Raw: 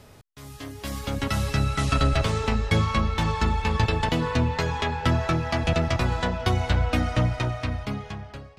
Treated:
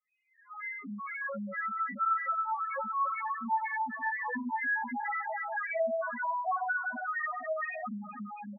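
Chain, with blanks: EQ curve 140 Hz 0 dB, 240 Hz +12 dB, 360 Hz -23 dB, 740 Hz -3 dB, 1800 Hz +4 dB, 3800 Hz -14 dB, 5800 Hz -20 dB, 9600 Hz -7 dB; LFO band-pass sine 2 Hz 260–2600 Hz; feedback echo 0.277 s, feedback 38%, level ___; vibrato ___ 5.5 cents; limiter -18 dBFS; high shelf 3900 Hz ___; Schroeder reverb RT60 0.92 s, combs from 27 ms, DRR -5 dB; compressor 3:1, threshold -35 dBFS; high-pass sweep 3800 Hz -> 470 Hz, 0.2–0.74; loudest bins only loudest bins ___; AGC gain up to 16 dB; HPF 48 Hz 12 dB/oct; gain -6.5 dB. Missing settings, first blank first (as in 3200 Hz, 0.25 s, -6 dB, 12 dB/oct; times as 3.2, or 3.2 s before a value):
-7 dB, 2.6 Hz, +9.5 dB, 2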